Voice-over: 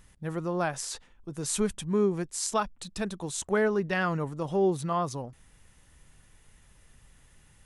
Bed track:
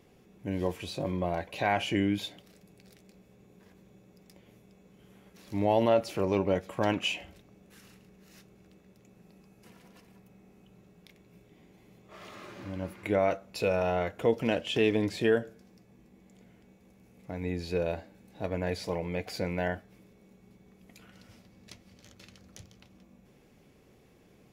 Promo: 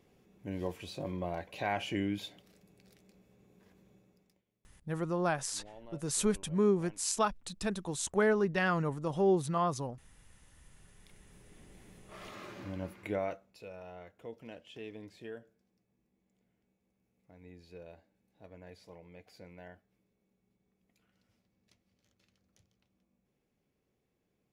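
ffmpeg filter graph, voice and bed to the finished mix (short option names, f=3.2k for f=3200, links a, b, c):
-filter_complex "[0:a]adelay=4650,volume=-2dB[a];[1:a]volume=21dB,afade=t=out:st=3.92:d=0.52:silence=0.0841395,afade=t=in:st=10.59:d=1.21:silence=0.0446684,afade=t=out:st=12.46:d=1.12:silence=0.105925[b];[a][b]amix=inputs=2:normalize=0"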